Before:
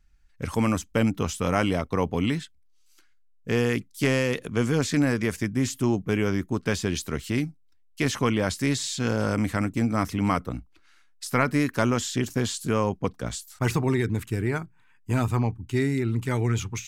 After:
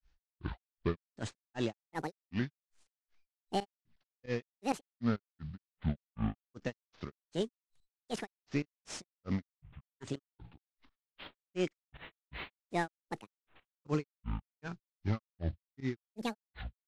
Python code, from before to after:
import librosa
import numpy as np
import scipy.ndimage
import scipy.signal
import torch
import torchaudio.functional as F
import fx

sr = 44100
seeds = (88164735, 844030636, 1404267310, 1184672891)

y = fx.cvsd(x, sr, bps=32000)
y = fx.volume_shaper(y, sr, bpm=100, per_beat=2, depth_db=-18, release_ms=88.0, shape='fast start')
y = fx.granulator(y, sr, seeds[0], grain_ms=198.0, per_s=2.6, spray_ms=100.0, spread_st=12)
y = F.gain(torch.from_numpy(y), -6.0).numpy()